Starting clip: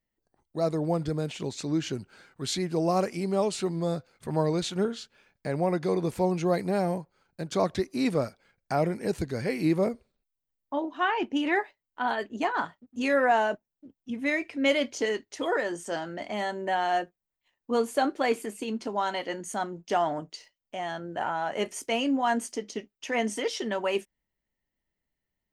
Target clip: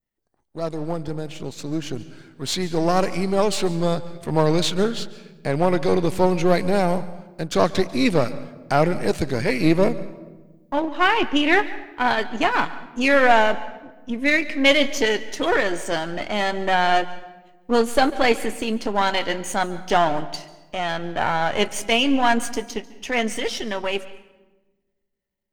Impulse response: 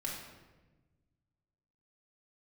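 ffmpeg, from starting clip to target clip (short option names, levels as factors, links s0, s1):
-filter_complex "[0:a]aeval=exprs='if(lt(val(0),0),0.447*val(0),val(0))':c=same,asplit=2[s0][s1];[1:a]atrim=start_sample=2205,adelay=142[s2];[s1][s2]afir=irnorm=-1:irlink=0,volume=0.141[s3];[s0][s3]amix=inputs=2:normalize=0,dynaudnorm=f=170:g=31:m=2.51,adynamicequalizer=threshold=0.0141:dfrequency=3100:dqfactor=0.76:tfrequency=3100:tqfactor=0.76:attack=5:release=100:ratio=0.375:range=2.5:mode=boostabove:tftype=bell,volume=1.19"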